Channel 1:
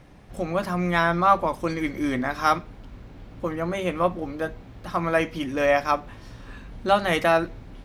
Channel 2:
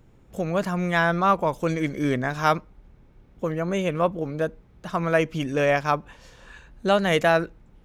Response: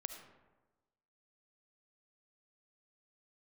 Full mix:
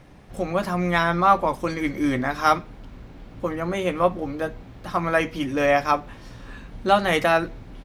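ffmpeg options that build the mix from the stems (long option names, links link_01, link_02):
-filter_complex "[0:a]volume=1.5dB[link_01];[1:a]adelay=15,volume=-9.5dB[link_02];[link_01][link_02]amix=inputs=2:normalize=0,bandreject=frequency=50:width_type=h:width=6,bandreject=frequency=100:width_type=h:width=6"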